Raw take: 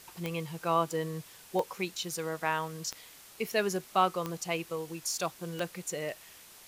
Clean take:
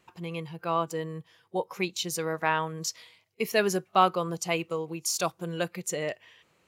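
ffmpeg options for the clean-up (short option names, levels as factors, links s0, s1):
-af "adeclick=t=4,afwtdn=0.0025,asetnsamples=n=441:p=0,asendcmd='1.73 volume volume 4.5dB',volume=1"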